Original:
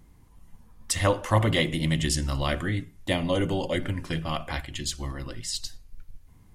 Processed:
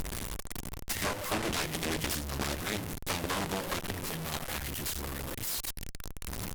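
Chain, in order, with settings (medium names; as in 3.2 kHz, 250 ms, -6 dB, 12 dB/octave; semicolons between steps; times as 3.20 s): one-bit delta coder 64 kbps, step -22 dBFS; compression 5:1, threshold -26 dBFS, peak gain reduction 10 dB; Chebyshev shaper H 7 -9 dB, 8 -7 dB, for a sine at -14 dBFS; trim -7.5 dB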